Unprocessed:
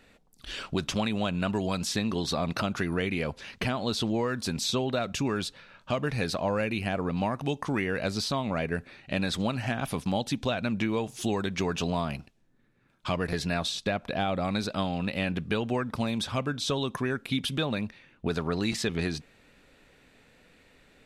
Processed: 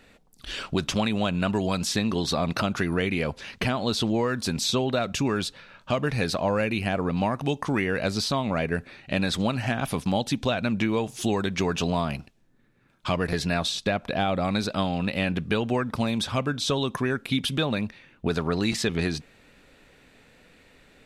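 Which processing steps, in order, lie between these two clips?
trim +3.5 dB

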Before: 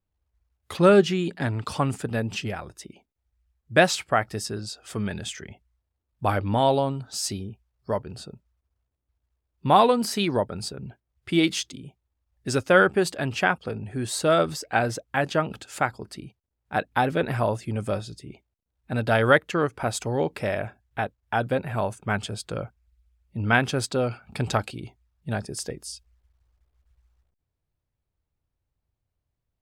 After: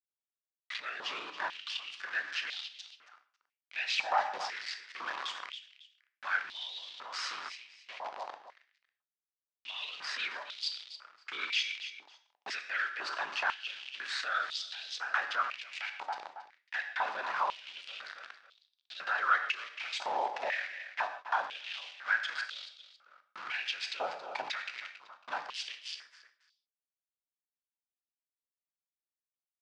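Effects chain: CVSD coder 64 kbps; whisper effect; small samples zeroed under -33 dBFS; peak limiter -14.5 dBFS, peak gain reduction 10 dB; on a send: feedback delay 275 ms, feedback 26%, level -17.5 dB; on the sum: gated-style reverb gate 180 ms falling, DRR 10 dB; compression 4:1, threshold -30 dBFS, peak gain reduction 10 dB; transient shaper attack -4 dB, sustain +3 dB; low-pass 5 kHz 24 dB/octave; step-sequenced high-pass 2 Hz 860–3600 Hz

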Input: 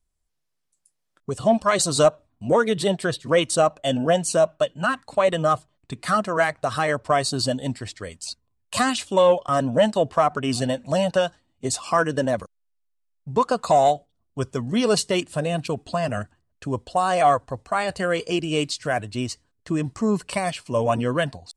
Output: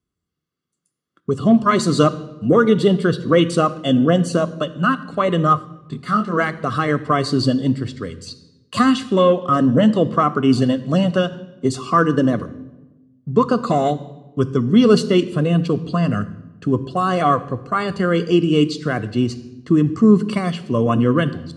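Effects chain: high-pass 110 Hz; reverberation RT60 1.1 s, pre-delay 3 ms, DRR 13.5 dB; 5.54–6.32 s: detune thickener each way 19 cents -> 35 cents; trim -5 dB

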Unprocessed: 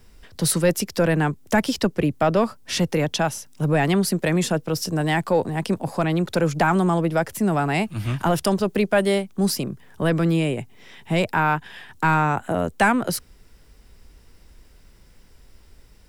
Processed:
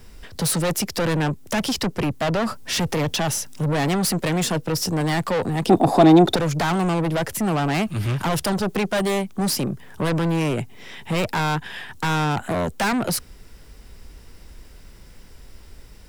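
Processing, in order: 2.43–4.18 s: transient shaper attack -1 dB, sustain +4 dB; saturation -25.5 dBFS, distortion -7 dB; 5.67–6.36 s: small resonant body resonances 330/700/3600 Hz, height 15 dB, ringing for 20 ms; trim +6.5 dB

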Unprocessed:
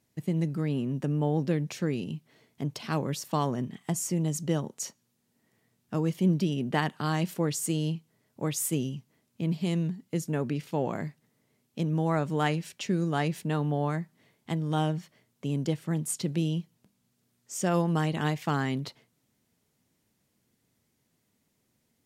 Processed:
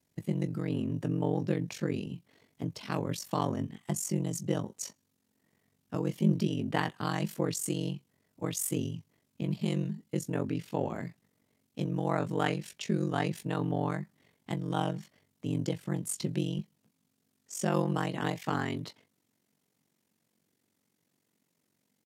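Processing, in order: high-pass 45 Hz 24 dB/octave, from 16.59 s 140 Hz; ring modulator 23 Hz; doubling 19 ms -11.5 dB

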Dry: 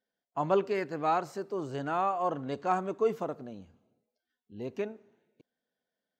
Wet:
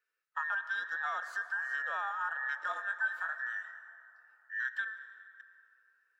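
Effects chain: every band turned upside down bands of 2 kHz; Bessel high-pass 530 Hz, order 4; peaking EQ 2 kHz +10 dB 0.82 oct; compression, threshold -31 dBFS, peak gain reduction 13.5 dB; 2.61–4.67 s: doubling 22 ms -5 dB; reverberation RT60 3.1 s, pre-delay 103 ms, DRR 12 dB; trim -2 dB

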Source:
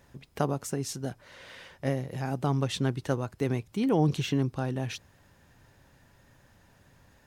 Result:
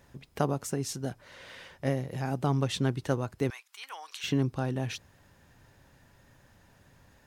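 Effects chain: 3.50–4.24 s: high-pass 1.1 kHz 24 dB/octave

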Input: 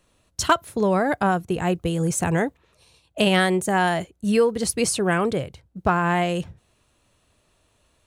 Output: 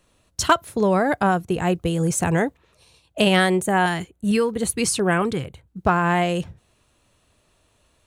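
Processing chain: 3.63–5.83 s: LFO notch square 2.2 Hz 600–5200 Hz; trim +1.5 dB

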